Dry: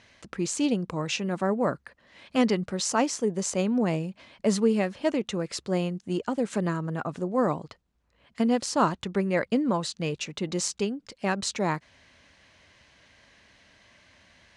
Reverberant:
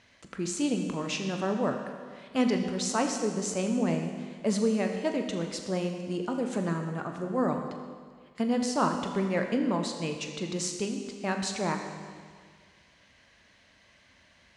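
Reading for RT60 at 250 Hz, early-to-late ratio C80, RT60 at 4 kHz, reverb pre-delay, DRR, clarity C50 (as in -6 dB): 1.8 s, 6.5 dB, 1.7 s, 20 ms, 4.0 dB, 5.5 dB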